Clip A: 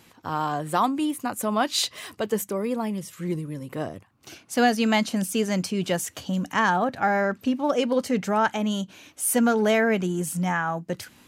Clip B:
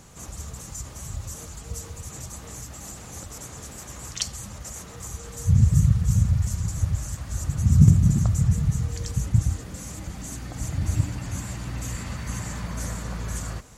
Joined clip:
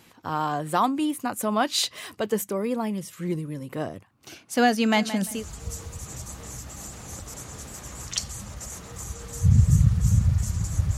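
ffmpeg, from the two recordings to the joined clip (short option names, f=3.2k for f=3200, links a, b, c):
-filter_complex "[0:a]asplit=3[a][b][c];[a]afade=t=out:st=4.91:d=0.02[d];[b]aecho=1:1:173|346|519:0.237|0.0688|0.0199,afade=t=in:st=4.91:d=0.02,afade=t=out:st=5.46:d=0.02[e];[c]afade=t=in:st=5.46:d=0.02[f];[d][e][f]amix=inputs=3:normalize=0,apad=whole_dur=10.97,atrim=end=10.97,atrim=end=5.46,asetpts=PTS-STARTPTS[g];[1:a]atrim=start=1.3:end=7.01,asetpts=PTS-STARTPTS[h];[g][h]acrossfade=d=0.2:c1=tri:c2=tri"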